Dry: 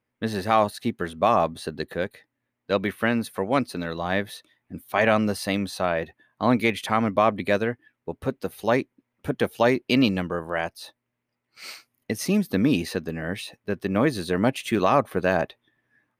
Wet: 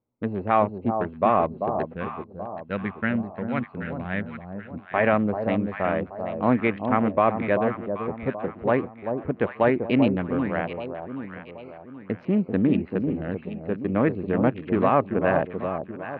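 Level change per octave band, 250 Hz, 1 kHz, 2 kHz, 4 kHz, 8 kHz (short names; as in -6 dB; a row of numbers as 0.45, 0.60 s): +1.0 dB, 0.0 dB, -2.5 dB, -12.5 dB, under -40 dB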